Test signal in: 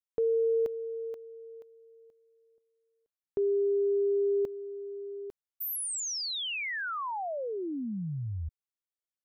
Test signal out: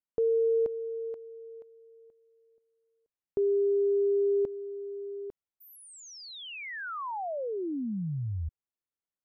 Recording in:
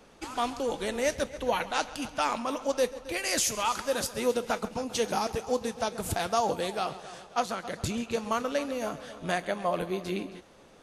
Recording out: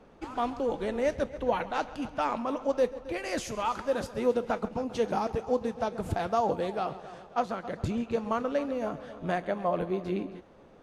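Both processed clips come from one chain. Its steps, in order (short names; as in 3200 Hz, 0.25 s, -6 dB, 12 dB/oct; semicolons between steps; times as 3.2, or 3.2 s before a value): LPF 1000 Hz 6 dB/oct; gain +2 dB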